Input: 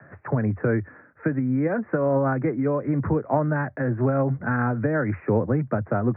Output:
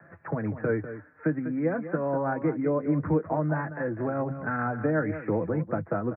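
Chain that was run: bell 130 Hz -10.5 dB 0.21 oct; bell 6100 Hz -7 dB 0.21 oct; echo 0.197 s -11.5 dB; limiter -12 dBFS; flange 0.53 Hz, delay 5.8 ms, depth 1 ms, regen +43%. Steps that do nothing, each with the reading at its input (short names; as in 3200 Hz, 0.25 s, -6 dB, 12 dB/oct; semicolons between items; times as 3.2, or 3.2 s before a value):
bell 6100 Hz: input band ends at 1900 Hz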